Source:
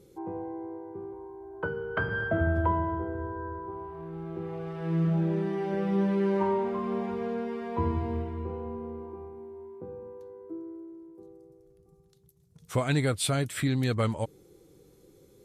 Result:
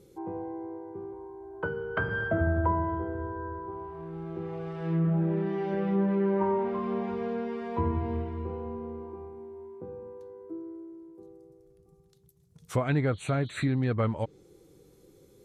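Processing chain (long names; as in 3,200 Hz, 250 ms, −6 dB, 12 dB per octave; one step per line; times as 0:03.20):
healed spectral selection 0:13.15–0:13.62, 2,900–5,900 Hz
treble cut that deepens with the level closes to 1,900 Hz, closed at −22.5 dBFS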